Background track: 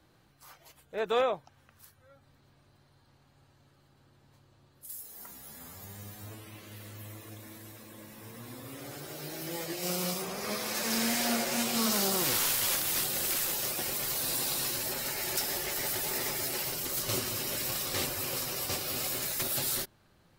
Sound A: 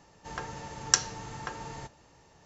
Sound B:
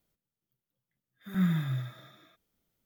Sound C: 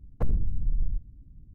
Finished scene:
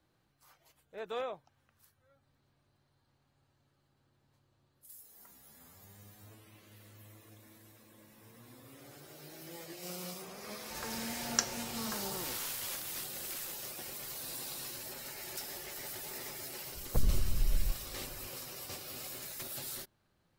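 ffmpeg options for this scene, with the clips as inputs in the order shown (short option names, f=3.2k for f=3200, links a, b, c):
-filter_complex "[0:a]volume=-10.5dB[a];[1:a]atrim=end=2.45,asetpts=PTS-STARTPTS,volume=-7.5dB,afade=t=in:d=0.004:c=hsin,afade=t=out:st=2.446:d=0.004:c=hsin,adelay=10450[b];[3:a]atrim=end=1.54,asetpts=PTS-STARTPTS,volume=-3.5dB,afade=t=in:d=0.004:c=hsin,afade=t=out:st=1.536:d=0.004:c=hsin,adelay=16740[c];[a][b][c]amix=inputs=3:normalize=0"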